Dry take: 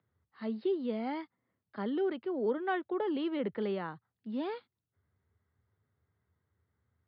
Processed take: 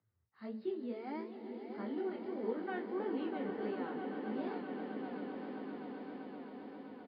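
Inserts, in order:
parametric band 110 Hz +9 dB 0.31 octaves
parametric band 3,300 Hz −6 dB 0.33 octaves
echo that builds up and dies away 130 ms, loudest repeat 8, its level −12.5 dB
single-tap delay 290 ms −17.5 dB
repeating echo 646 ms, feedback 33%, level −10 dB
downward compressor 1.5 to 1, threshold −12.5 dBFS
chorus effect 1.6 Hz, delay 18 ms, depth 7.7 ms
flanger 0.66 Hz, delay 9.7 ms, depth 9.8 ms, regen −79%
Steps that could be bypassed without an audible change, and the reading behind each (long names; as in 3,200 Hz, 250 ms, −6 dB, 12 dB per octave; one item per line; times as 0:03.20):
downward compressor, threshold −12.5 dBFS: peak of its input −18.5 dBFS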